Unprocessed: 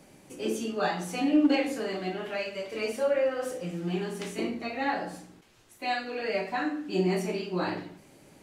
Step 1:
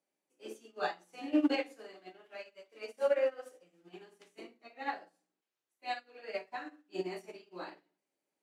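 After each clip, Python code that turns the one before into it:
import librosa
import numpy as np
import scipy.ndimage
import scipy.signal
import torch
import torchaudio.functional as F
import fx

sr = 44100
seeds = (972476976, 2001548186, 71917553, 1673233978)

y = scipy.signal.sosfilt(scipy.signal.butter(2, 350.0, 'highpass', fs=sr, output='sos'), x)
y = fx.upward_expand(y, sr, threshold_db=-43.0, expansion=2.5)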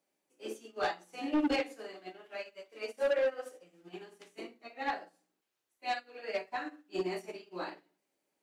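y = 10.0 ** (-29.5 / 20.0) * np.tanh(x / 10.0 ** (-29.5 / 20.0))
y = y * librosa.db_to_amplitude(5.0)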